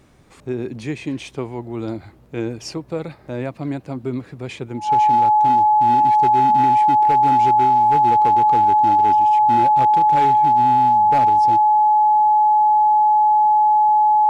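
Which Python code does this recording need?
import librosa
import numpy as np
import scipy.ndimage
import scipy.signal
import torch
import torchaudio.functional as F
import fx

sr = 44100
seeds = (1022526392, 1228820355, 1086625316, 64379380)

y = fx.fix_declip(x, sr, threshold_db=-10.5)
y = fx.notch(y, sr, hz=850.0, q=30.0)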